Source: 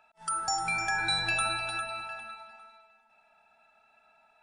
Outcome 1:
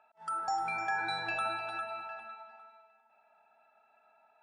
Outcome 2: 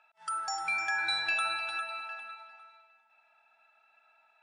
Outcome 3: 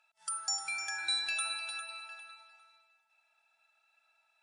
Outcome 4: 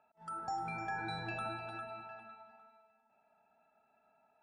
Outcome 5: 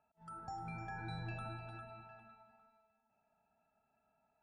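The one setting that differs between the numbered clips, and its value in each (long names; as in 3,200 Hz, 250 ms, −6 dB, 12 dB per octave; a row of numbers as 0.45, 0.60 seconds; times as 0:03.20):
resonant band-pass, frequency: 690, 2,100, 6,700, 270, 110 Hertz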